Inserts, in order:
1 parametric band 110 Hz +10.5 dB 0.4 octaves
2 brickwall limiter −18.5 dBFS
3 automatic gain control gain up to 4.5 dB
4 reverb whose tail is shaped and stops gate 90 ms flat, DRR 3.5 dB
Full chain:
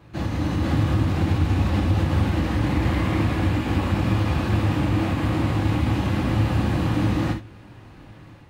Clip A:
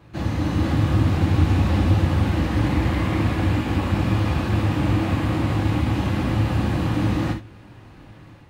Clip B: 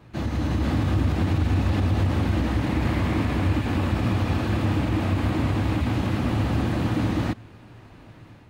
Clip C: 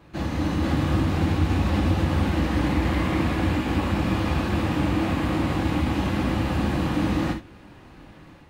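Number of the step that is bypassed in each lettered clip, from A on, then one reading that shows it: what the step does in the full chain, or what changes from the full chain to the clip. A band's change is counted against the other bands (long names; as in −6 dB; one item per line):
2, change in crest factor +2.5 dB
4, change in integrated loudness −1.5 LU
1, 125 Hz band −4.0 dB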